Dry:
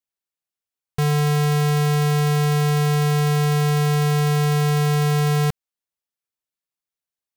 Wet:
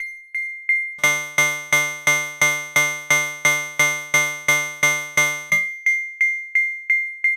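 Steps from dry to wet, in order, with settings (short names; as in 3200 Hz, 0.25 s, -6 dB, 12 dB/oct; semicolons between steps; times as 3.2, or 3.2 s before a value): self-modulated delay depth 0.42 ms; resonator 200 Hz, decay 0.54 s, harmonics all, mix 90%; thin delay 0.449 s, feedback 46%, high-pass 4500 Hz, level -18.5 dB; whine 2100 Hz -29 dBFS; AGC gain up to 12.5 dB; tilt +2 dB/oct; notches 50/100/150 Hz; requantised 8-bit, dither none; LPF 11000 Hz 12 dB/oct; comb 4 ms, depth 39%; dB-ramp tremolo decaying 2.9 Hz, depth 29 dB; gain +6.5 dB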